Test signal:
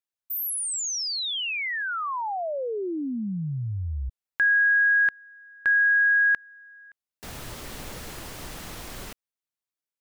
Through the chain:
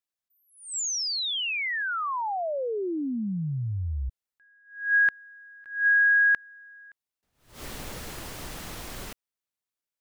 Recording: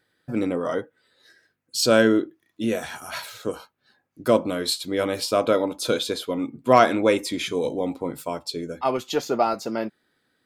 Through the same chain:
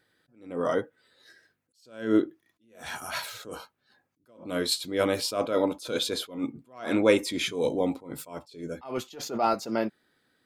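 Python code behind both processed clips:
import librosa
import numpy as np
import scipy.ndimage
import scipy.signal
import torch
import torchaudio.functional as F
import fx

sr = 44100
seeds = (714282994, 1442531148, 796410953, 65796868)

y = fx.attack_slew(x, sr, db_per_s=130.0)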